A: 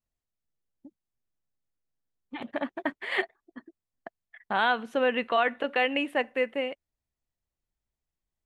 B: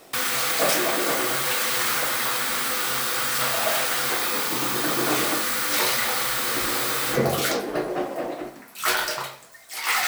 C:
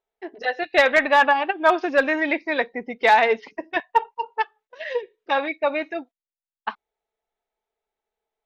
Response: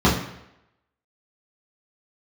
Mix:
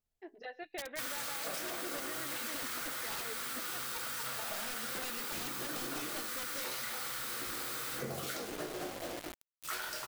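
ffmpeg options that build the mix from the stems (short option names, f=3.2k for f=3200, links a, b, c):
-filter_complex "[0:a]volume=-0.5dB[a];[1:a]adynamicequalizer=threshold=0.00708:dfrequency=1400:dqfactor=3.2:tfrequency=1400:tqfactor=3.2:attack=5:release=100:ratio=0.375:range=2:mode=boostabove:tftype=bell,acrusher=bits=4:mix=0:aa=0.000001,adelay=850,volume=-10dB[b];[2:a]highshelf=f=3.3k:g=-6.5,volume=-12.5dB[c];[a][c]amix=inputs=2:normalize=0,aeval=exprs='(mod(10.6*val(0)+1,2)-1)/10.6':c=same,alimiter=level_in=6.5dB:limit=-24dB:level=0:latency=1:release=253,volume=-6.5dB,volume=0dB[d];[b][d]amix=inputs=2:normalize=0,equalizer=f=940:w=0.41:g=-3.5,acompressor=threshold=-36dB:ratio=6"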